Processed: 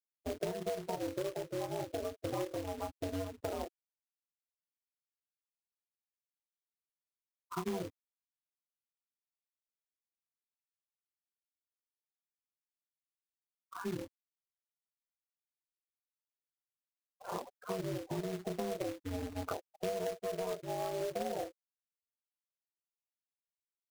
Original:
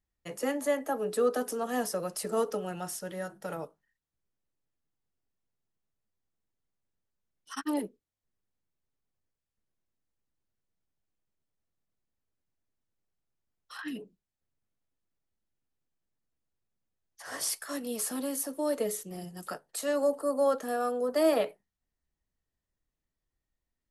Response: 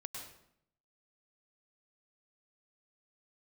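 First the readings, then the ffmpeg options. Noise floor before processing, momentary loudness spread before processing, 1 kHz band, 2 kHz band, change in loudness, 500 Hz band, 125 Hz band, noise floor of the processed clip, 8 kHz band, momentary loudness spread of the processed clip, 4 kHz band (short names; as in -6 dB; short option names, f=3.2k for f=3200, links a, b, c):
under -85 dBFS, 14 LU, -6.0 dB, -9.0 dB, -8.0 dB, -8.0 dB, +4.0 dB, under -85 dBFS, -14.5 dB, 6 LU, -6.5 dB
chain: -filter_complex "[0:a]agate=range=-33dB:threshold=-49dB:ratio=3:detection=peak,asplit=2[a][b];[b]aecho=0:1:26|37:0.631|0.178[c];[a][c]amix=inputs=2:normalize=0,aeval=exprs='val(0)*sin(2*PI*95*n/s)':c=same,lowpass=f=1.1k:w=0.5412,lowpass=f=1.1k:w=1.3066,acrusher=bits=8:mix=0:aa=0.5,acompressor=threshold=-42dB:ratio=12,afftfilt=real='re*gte(hypot(re,im),0.00631)':imag='im*gte(hypot(re,im),0.00631)':win_size=1024:overlap=0.75,acrusher=bits=2:mode=log:mix=0:aa=0.000001,volume=8dB"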